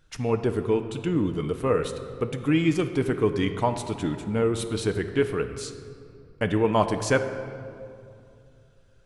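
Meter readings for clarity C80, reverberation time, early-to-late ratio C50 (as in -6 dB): 10.5 dB, 2.5 s, 9.5 dB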